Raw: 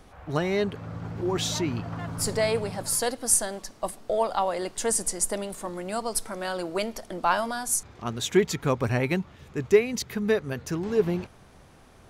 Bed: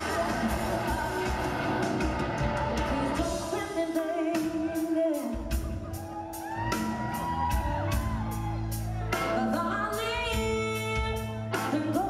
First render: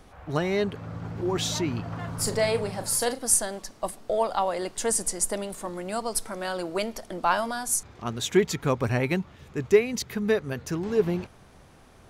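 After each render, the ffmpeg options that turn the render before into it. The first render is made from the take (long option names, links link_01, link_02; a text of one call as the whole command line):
ffmpeg -i in.wav -filter_complex "[0:a]asettb=1/sr,asplit=3[link_01][link_02][link_03];[link_01]atrim=end=1.874[link_04];[link_02]atrim=start=1.87:end=3.19,asetpts=PTS-STARTPTS,afade=type=in:duration=0.004:curve=qsin,afade=type=out:start_time=1.316:duration=0.004:curve=qsin,asplit=2[link_05][link_06];[link_06]adelay=38,volume=-9.5dB[link_07];[link_05][link_07]amix=inputs=2:normalize=0,atrim=end_sample=58212[link_08];[link_03]atrim=start=3.186[link_09];[link_04][link_08]acrossfade=duration=0.004:curve1=hsin:curve2=qsin[link_10];[link_10][link_09]acrossfade=duration=0.004:curve1=qsin:curve2=hsin" out.wav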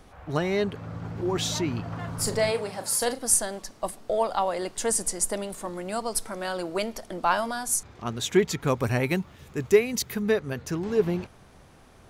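ffmpeg -i in.wav -filter_complex "[0:a]asettb=1/sr,asplit=3[link_01][link_02][link_03];[link_01]atrim=end=2.514[link_04];[link_02]atrim=start=2.51:end=3.02,asetpts=PTS-STARTPTS,afade=type=in:duration=0.004:curve=qsin,afade=type=out:start_time=0.506:duration=0.004:curve=qsin,highpass=frequency=300:poles=1[link_05];[link_03]atrim=start=3.016[link_06];[link_04][link_05]acrossfade=duration=0.004:curve1=hsin:curve2=qsin[link_07];[link_07][link_06]acrossfade=duration=0.004:curve1=qsin:curve2=hsin,asettb=1/sr,asplit=3[link_08][link_09][link_10];[link_08]atrim=end=8.674[link_11];[link_09]atrim=start=8.67:end=10.22,asetpts=PTS-STARTPTS,afade=type=in:duration=0.004:curve=qsin,afade=type=out:start_time=1.546:duration=0.004:curve=qsin,highshelf=frequency=8700:gain=11[link_12];[link_10]atrim=start=10.216[link_13];[link_11][link_12]acrossfade=duration=0.004:curve1=hsin:curve2=qsin[link_14];[link_14][link_13]acrossfade=duration=0.004:curve1=qsin:curve2=hsin" out.wav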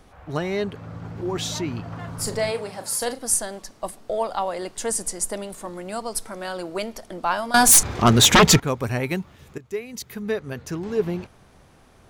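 ffmpeg -i in.wav -filter_complex "[0:a]asettb=1/sr,asplit=3[link_01][link_02][link_03];[link_01]atrim=end=7.544[link_04];[link_02]atrim=start=7.54:end=8.6,asetpts=PTS-STARTPTS,afade=type=in:duration=0.004:curve=qsin,afade=type=out:start_time=1.056:duration=0.004:curve=qsin,aeval=exprs='0.398*sin(PI/2*5.62*val(0)/0.398)':channel_layout=same[link_05];[link_03]atrim=start=8.596[link_06];[link_04][link_05]acrossfade=duration=0.004:curve1=hsin:curve2=qsin[link_07];[link_07][link_06]acrossfade=duration=0.004:curve1=qsin:curve2=hsin,asplit=2[link_08][link_09];[link_08]atrim=end=9.58,asetpts=PTS-STARTPTS,afade=type=out:start_time=9.576:duration=0.004:curve=hsin:silence=0.133352[link_10];[link_09]atrim=start=9.58,asetpts=PTS-STARTPTS,afade=type=in:duration=0.99:silence=0.133352[link_11];[link_10][link_11]concat=n=2:v=0:a=1" out.wav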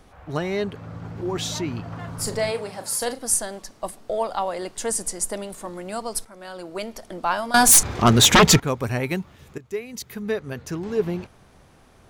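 ffmpeg -i in.wav -filter_complex "[0:a]asplit=2[link_01][link_02];[link_01]atrim=end=6.25,asetpts=PTS-STARTPTS,afade=type=out:start_time=6.246:duration=0.004:curve=hsin:silence=0.237137[link_03];[link_02]atrim=start=6.25,asetpts=PTS-STARTPTS,afade=type=in:duration=0.82:silence=0.237137[link_04];[link_03][link_04]concat=n=2:v=0:a=1" out.wav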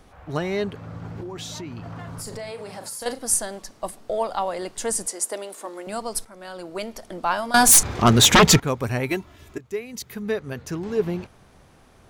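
ffmpeg -i in.wav -filter_complex "[0:a]asettb=1/sr,asplit=3[link_01][link_02][link_03];[link_01]atrim=end=1.204[link_04];[link_02]atrim=start=1.2:end=3.06,asetpts=PTS-STARTPTS,afade=type=in:duration=0.004:curve=qsin,afade=type=out:start_time=1.856:duration=0.004:curve=qsin,acompressor=threshold=-31dB:ratio=6:attack=3.2:release=140:knee=1:detection=peak[link_05];[link_03]atrim=start=3.056[link_06];[link_04][link_05]acrossfade=duration=0.004:curve1=hsin:curve2=qsin[link_07];[link_07][link_06]acrossfade=duration=0.004:curve1=qsin:curve2=hsin,asettb=1/sr,asplit=3[link_08][link_09][link_10];[link_08]atrim=end=5.064[link_11];[link_09]atrim=start=5.06:end=5.87,asetpts=PTS-STARTPTS,afade=type=in:duration=0.004:curve=qsin,afade=type=out:start_time=0.806:duration=0.004:curve=qsin,highpass=frequency=290:width=0.5412,highpass=frequency=290:width=1.3066[link_12];[link_10]atrim=start=5.866[link_13];[link_11][link_12]acrossfade=duration=0.004:curve1=hsin:curve2=qsin[link_14];[link_14][link_13]acrossfade=duration=0.004:curve1=qsin:curve2=hsin,asettb=1/sr,asplit=3[link_15][link_16][link_17];[link_15]atrim=end=9.094[link_18];[link_16]atrim=start=9.09:end=9.59,asetpts=PTS-STARTPTS,afade=type=in:duration=0.004:curve=qsin,afade=type=out:start_time=0.496:duration=0.004:curve=qsin,aecho=1:1:3:0.65,atrim=end_sample=22050[link_19];[link_17]atrim=start=9.586[link_20];[link_18][link_19]acrossfade=duration=0.004:curve1=hsin:curve2=qsin[link_21];[link_21][link_20]acrossfade=duration=0.004:curve1=qsin:curve2=hsin" out.wav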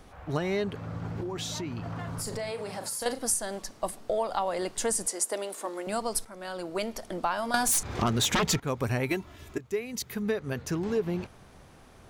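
ffmpeg -i in.wav -af "acompressor=threshold=-24dB:ratio=8" out.wav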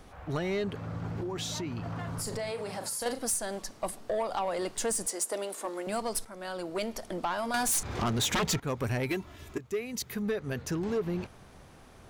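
ffmpeg -i in.wav -af "asoftclip=type=tanh:threshold=-23.5dB" out.wav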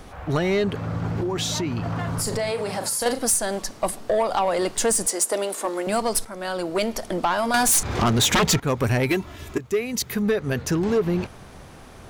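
ffmpeg -i in.wav -af "volume=9.5dB" out.wav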